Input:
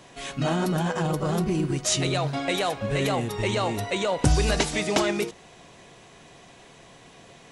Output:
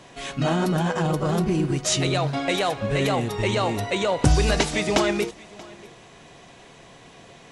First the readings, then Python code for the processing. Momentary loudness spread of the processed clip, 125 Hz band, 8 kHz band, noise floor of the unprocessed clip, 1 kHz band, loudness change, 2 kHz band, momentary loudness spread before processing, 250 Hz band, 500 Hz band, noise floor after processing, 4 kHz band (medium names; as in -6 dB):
8 LU, +2.5 dB, +0.5 dB, -51 dBFS, +2.5 dB, +2.5 dB, +2.5 dB, 4 LU, +2.5 dB, +2.5 dB, -48 dBFS, +2.0 dB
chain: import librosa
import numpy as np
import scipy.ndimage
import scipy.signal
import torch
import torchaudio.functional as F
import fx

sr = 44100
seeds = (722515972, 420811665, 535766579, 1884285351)

p1 = fx.high_shelf(x, sr, hz=9100.0, db=-6.0)
p2 = p1 + fx.echo_single(p1, sr, ms=632, db=-22.5, dry=0)
y = F.gain(torch.from_numpy(p2), 2.5).numpy()